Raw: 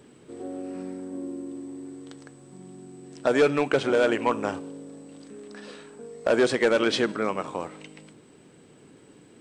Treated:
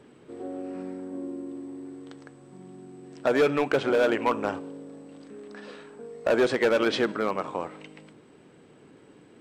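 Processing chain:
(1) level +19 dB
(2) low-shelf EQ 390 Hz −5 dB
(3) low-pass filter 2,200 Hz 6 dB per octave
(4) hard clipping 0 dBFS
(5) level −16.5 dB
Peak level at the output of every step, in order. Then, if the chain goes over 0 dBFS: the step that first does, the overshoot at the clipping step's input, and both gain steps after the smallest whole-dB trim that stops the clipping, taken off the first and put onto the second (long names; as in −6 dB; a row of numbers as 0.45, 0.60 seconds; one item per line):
+5.5, +6.5, +5.0, 0.0, −16.5 dBFS
step 1, 5.0 dB
step 1 +14 dB, step 5 −11.5 dB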